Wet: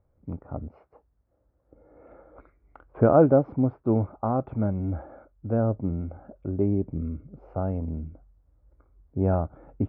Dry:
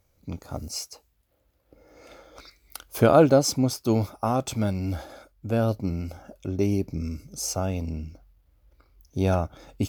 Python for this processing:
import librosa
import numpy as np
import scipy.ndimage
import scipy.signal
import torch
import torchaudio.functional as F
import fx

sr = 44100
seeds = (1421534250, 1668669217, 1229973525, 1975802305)

y = scipy.signal.sosfilt(scipy.signal.bessel(6, 1000.0, 'lowpass', norm='mag', fs=sr, output='sos'), x)